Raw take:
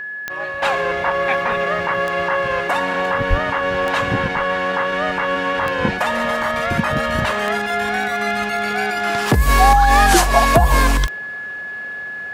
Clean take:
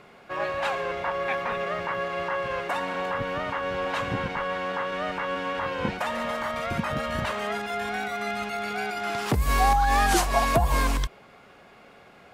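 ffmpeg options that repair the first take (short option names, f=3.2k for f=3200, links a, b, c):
-filter_complex "[0:a]adeclick=t=4,bandreject=f=1.7k:w=30,asplit=3[a][b][c];[a]afade=t=out:st=3.29:d=0.02[d];[b]highpass=f=140:w=0.5412,highpass=f=140:w=1.3066,afade=t=in:st=3.29:d=0.02,afade=t=out:st=3.41:d=0.02[e];[c]afade=t=in:st=3.41:d=0.02[f];[d][e][f]amix=inputs=3:normalize=0,asetnsamples=n=441:p=0,asendcmd='0.62 volume volume -9dB',volume=0dB"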